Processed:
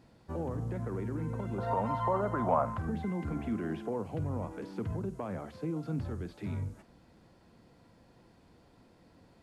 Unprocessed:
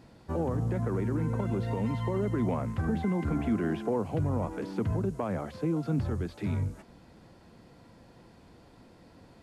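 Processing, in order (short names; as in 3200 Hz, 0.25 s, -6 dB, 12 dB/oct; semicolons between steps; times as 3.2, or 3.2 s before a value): 1.58–2.78 band shelf 910 Hz +15 dB; flutter echo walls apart 8.6 m, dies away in 0.2 s; gain -6 dB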